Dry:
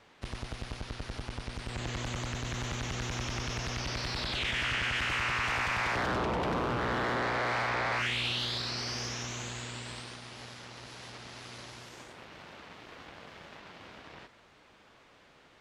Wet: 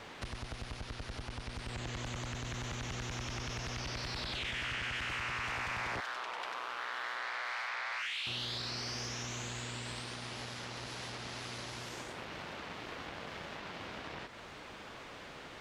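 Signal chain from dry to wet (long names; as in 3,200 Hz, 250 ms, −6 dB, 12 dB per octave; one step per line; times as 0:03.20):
0:06.00–0:08.27: high-pass filter 1,200 Hz 12 dB per octave
downward compressor 3 to 1, threshold −53 dBFS, peak gain reduction 17.5 dB
soft clipping −39 dBFS, distortion −24 dB
level +11 dB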